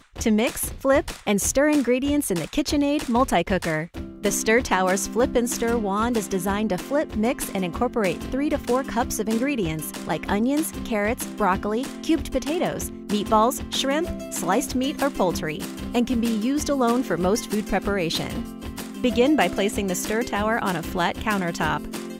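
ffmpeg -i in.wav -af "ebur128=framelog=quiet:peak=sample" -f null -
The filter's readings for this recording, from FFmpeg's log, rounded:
Integrated loudness:
  I:         -23.5 LUFS
  Threshold: -33.6 LUFS
Loudness range:
  LRA:         2.5 LU
  Threshold: -43.6 LUFS
  LRA low:   -24.8 LUFS
  LRA high:  -22.2 LUFS
Sample peak:
  Peak:       -6.9 dBFS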